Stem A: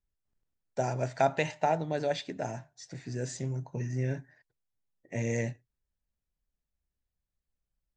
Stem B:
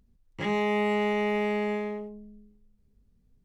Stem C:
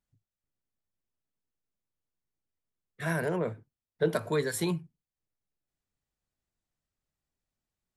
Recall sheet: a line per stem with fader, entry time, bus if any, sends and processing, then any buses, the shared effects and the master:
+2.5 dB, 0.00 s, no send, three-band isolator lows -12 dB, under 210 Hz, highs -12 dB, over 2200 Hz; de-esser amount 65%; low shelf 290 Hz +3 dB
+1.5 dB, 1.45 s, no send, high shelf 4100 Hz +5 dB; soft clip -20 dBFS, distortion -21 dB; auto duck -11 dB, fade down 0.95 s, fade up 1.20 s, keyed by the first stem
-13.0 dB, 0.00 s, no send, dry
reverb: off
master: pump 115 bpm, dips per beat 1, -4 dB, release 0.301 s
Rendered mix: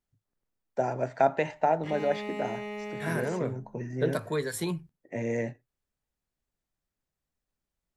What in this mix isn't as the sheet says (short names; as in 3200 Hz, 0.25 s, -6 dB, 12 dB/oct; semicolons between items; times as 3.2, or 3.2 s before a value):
stem C -13.0 dB -> -1.5 dB; master: missing pump 115 bpm, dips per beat 1, -4 dB, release 0.301 s